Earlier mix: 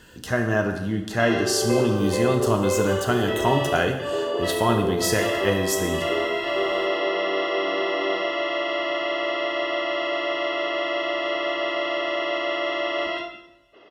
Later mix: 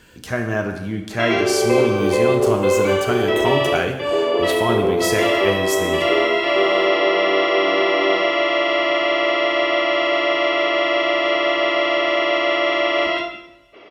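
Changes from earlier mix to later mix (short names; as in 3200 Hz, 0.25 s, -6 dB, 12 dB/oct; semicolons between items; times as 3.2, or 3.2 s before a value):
background +7.0 dB; master: remove Butterworth band-stop 2300 Hz, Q 6.8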